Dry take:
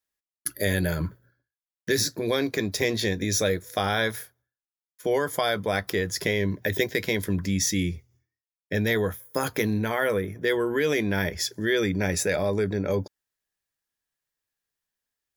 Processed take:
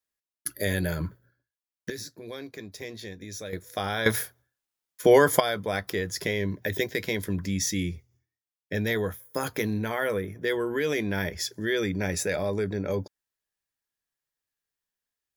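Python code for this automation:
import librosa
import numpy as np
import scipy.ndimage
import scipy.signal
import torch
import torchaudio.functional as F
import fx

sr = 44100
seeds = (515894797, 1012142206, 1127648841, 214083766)

y = fx.gain(x, sr, db=fx.steps((0.0, -2.5), (1.9, -14.0), (3.53, -4.5), (4.06, 7.5), (5.4, -3.0)))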